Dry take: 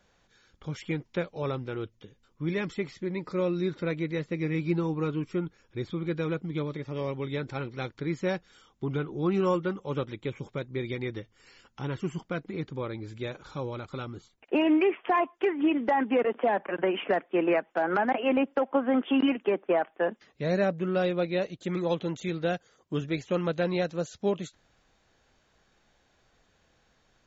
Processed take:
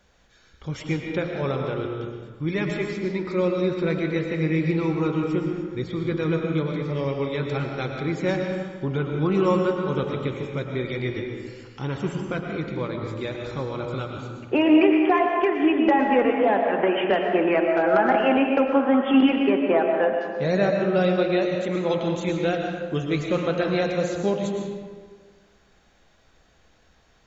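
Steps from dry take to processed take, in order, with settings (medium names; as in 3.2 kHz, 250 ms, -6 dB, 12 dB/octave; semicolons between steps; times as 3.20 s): peaking EQ 63 Hz +10 dB 0.42 oct; de-hum 58.18 Hz, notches 31; on a send: reverberation RT60 1.6 s, pre-delay 75 ms, DRR 2 dB; on the sum: trim +4.5 dB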